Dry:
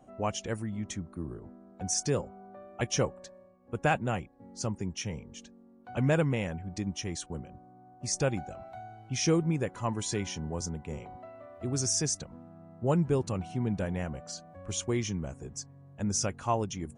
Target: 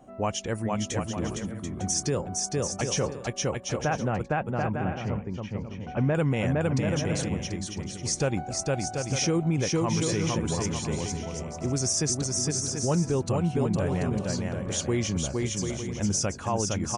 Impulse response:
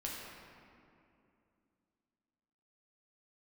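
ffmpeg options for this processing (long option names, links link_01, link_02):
-filter_complex "[0:a]asettb=1/sr,asplit=3[link_01][link_02][link_03];[link_01]atrim=end=3.784[link_04];[link_02]atrim=start=3.78:end=6.15,asetpts=PTS-STARTPTS,afade=type=in:duration=0.004:curve=qsin,afade=type=out:start_time=2.366:duration=0.004:curve=qsin,lowpass=1900[link_05];[link_03]atrim=start=6.146[link_06];[link_04][link_05]acrossfade=duration=0.004:curve1=hsin:curve2=qsin[link_07];[link_07][link_06]acrossfade=duration=0.004:curve1=qsin:curve2=hsin,aecho=1:1:460|736|901.6|1001|1061:0.631|0.398|0.251|0.158|0.1,alimiter=limit=-21.5dB:level=0:latency=1:release=60,volume=4.5dB"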